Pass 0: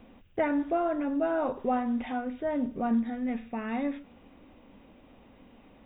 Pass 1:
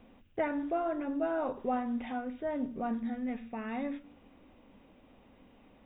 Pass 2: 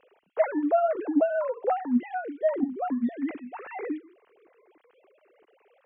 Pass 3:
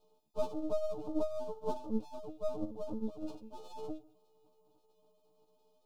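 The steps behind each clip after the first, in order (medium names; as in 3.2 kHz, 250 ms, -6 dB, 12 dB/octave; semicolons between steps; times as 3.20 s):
de-hum 57.68 Hz, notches 6; trim -4 dB
formants replaced by sine waves; trim +7 dB
partials quantised in pitch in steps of 6 st; half-wave rectifier; Butterworth band-stop 1.9 kHz, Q 0.59; trim -6 dB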